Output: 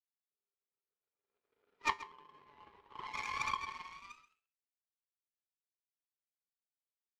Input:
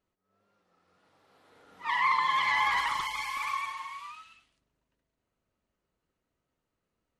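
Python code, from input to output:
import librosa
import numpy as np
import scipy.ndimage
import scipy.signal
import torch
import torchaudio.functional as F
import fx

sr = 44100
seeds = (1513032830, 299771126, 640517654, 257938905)

p1 = fx.env_lowpass_down(x, sr, base_hz=370.0, full_db=-25.0)
p2 = scipy.signal.sosfilt(scipy.signal.butter(2, 3400.0, 'lowpass', fs=sr, output='sos'), p1)
p3 = fx.low_shelf(p2, sr, hz=220.0, db=-8.5)
p4 = fx.notch(p3, sr, hz=780.0, q=12.0)
p5 = fx.small_body(p4, sr, hz=(410.0, 2400.0), ring_ms=45, db=15)
p6 = fx.power_curve(p5, sr, exponent=2.0)
p7 = fx.comb_fb(p6, sr, f0_hz=80.0, decay_s=0.26, harmonics='odd', damping=0.0, mix_pct=50)
p8 = p7 + fx.echo_single(p7, sr, ms=132, db=-16.0, dry=0)
y = F.gain(torch.from_numpy(p8), 10.0).numpy()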